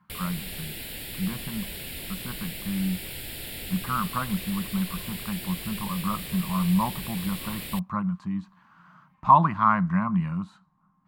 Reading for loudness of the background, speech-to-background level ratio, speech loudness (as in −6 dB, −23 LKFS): −35.5 LKFS, 8.0 dB, −27.5 LKFS